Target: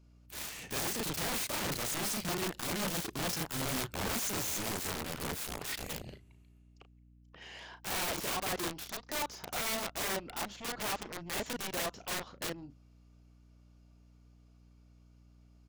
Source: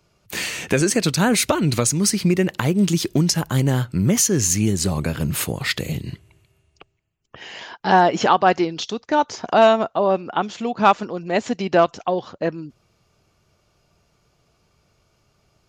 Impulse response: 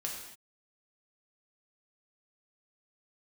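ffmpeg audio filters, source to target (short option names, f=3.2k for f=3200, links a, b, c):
-filter_complex "[0:a]volume=17dB,asoftclip=hard,volume=-17dB,aeval=exprs='0.15*(cos(1*acos(clip(val(0)/0.15,-1,1)))-cos(1*PI/2))+0.075*(cos(3*acos(clip(val(0)/0.15,-1,1)))-cos(3*PI/2))':c=same,asplit=2[a][b];[b]adelay=35,volume=-10dB[c];[a][c]amix=inputs=2:normalize=0,aeval=exprs='val(0)+0.00224*(sin(2*PI*60*n/s)+sin(2*PI*2*60*n/s)/2+sin(2*PI*3*60*n/s)/3+sin(2*PI*4*60*n/s)/4+sin(2*PI*5*60*n/s)/5)':c=same,aeval=exprs='(mod(14.1*val(0)+1,2)-1)/14.1':c=same,volume=-6dB"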